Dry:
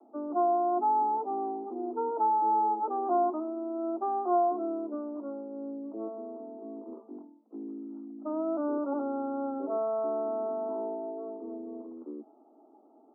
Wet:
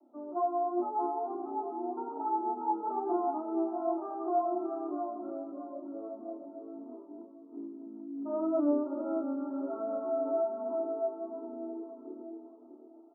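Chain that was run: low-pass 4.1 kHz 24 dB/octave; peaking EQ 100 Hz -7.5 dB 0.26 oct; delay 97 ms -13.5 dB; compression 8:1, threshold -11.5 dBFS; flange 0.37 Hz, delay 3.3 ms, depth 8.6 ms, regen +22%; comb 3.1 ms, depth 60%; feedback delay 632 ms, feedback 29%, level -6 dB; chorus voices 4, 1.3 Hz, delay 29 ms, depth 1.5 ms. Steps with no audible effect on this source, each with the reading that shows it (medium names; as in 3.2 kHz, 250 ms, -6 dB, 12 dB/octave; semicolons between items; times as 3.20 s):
low-pass 4.1 kHz: input has nothing above 1.4 kHz; peaking EQ 100 Hz: input has nothing below 190 Hz; compression, threshold -11.5 dBFS: peak at its input -17.0 dBFS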